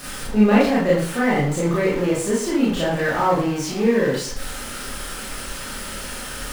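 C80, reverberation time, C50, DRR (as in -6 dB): 7.0 dB, 0.50 s, 1.0 dB, -7.0 dB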